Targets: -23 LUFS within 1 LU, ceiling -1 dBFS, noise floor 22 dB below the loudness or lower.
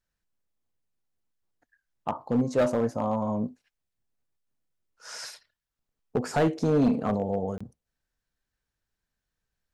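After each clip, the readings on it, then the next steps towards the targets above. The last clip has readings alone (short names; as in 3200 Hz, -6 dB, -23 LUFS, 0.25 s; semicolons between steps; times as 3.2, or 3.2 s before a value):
clipped 0.7%; flat tops at -17.5 dBFS; dropouts 1; longest dropout 25 ms; loudness -27.5 LUFS; peak -17.5 dBFS; loudness target -23.0 LUFS
-> clip repair -17.5 dBFS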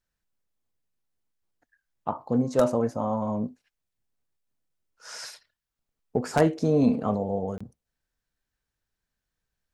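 clipped 0.0%; dropouts 1; longest dropout 25 ms
-> interpolate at 7.58, 25 ms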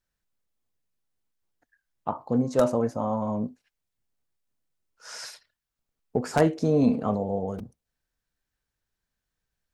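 dropouts 0; loudness -26.5 LUFS; peak -8.5 dBFS; loudness target -23.0 LUFS
-> gain +3.5 dB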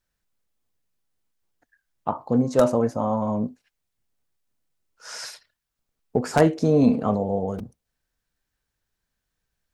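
loudness -23.0 LUFS; peak -5.0 dBFS; noise floor -82 dBFS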